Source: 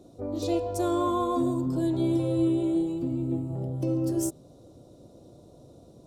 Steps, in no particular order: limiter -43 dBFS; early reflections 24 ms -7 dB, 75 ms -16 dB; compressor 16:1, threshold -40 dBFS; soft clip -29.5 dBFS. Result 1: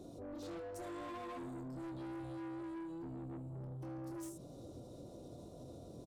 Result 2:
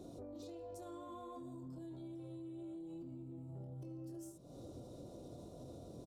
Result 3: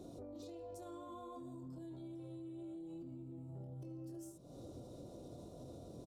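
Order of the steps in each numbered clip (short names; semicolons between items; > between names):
early reflections > soft clip > limiter > compressor; early reflections > compressor > soft clip > limiter; early reflections > compressor > limiter > soft clip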